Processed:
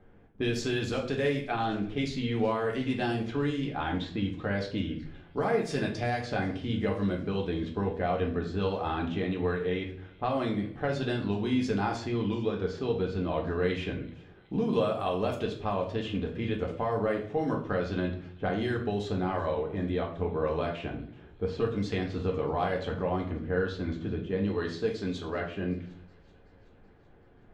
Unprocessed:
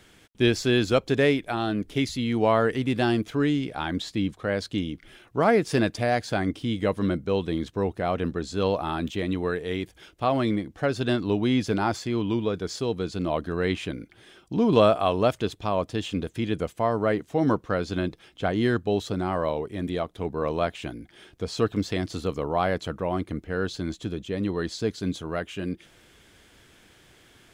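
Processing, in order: low-pass opened by the level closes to 850 Hz, open at -18 dBFS; 24.48–25.4 tone controls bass -5 dB, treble +6 dB; compressor 5:1, threshold -26 dBFS, peak gain reduction 11.5 dB; thin delay 0.378 s, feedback 61%, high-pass 2600 Hz, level -20.5 dB; reverb RT60 0.55 s, pre-delay 3 ms, DRR -1 dB; gain -3 dB

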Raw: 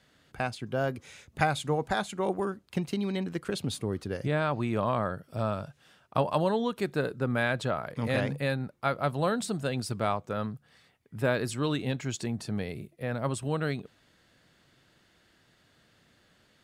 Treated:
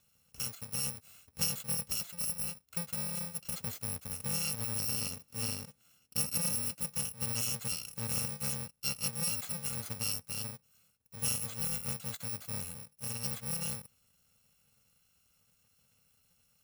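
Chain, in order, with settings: FFT order left unsorted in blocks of 128 samples; 4.92–6.86 bell 310 Hz +14.5 dB 0.45 oct; gain -6.5 dB

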